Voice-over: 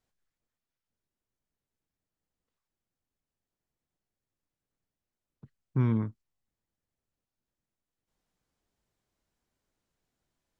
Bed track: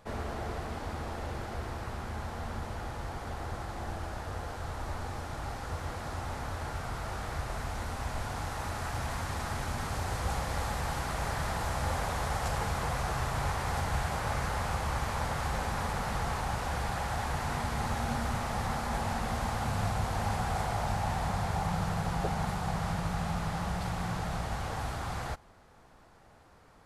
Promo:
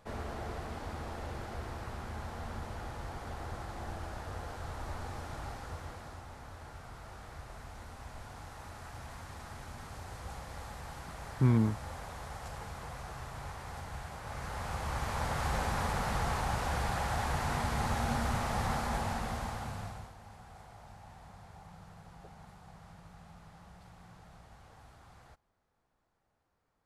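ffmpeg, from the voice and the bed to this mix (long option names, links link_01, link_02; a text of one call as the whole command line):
ffmpeg -i stem1.wav -i stem2.wav -filter_complex "[0:a]adelay=5650,volume=0.5dB[link_01];[1:a]volume=8dB,afade=type=out:start_time=5.37:duration=0.89:silence=0.398107,afade=type=in:start_time=14.22:duration=1.31:silence=0.266073,afade=type=out:start_time=18.75:duration=1.4:silence=0.0891251[link_02];[link_01][link_02]amix=inputs=2:normalize=0" out.wav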